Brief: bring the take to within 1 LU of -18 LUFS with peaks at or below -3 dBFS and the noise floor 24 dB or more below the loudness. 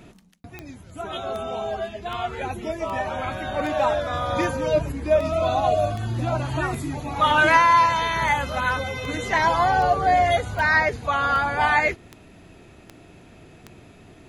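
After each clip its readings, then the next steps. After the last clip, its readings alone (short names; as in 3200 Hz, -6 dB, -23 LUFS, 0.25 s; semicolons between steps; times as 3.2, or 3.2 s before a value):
clicks 18; loudness -22.0 LUFS; peak -3.5 dBFS; loudness target -18.0 LUFS
-> de-click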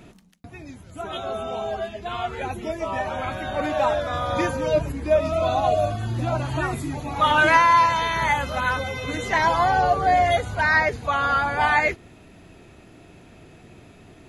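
clicks 0; loudness -22.0 LUFS; peak -3.5 dBFS; loudness target -18.0 LUFS
-> gain +4 dB; limiter -3 dBFS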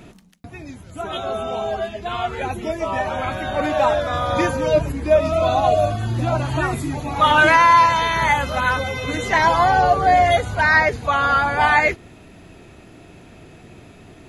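loudness -18.0 LUFS; peak -3.0 dBFS; noise floor -45 dBFS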